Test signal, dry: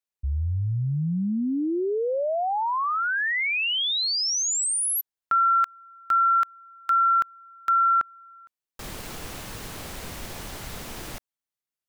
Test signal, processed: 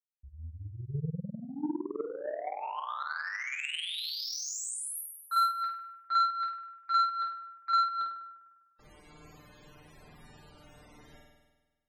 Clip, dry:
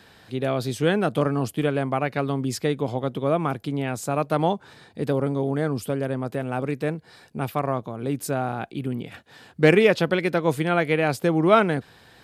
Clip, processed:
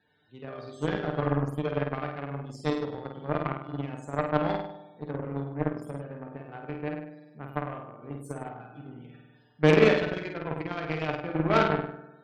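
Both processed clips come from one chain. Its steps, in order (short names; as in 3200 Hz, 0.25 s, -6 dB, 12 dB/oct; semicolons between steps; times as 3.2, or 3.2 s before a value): resonator 150 Hz, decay 0.19 s, harmonics all, mix 80%; flutter echo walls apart 8.6 m, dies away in 1.3 s; loudest bins only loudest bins 64; added harmonics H 7 -19 dB, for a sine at -7 dBFS; gain +1.5 dB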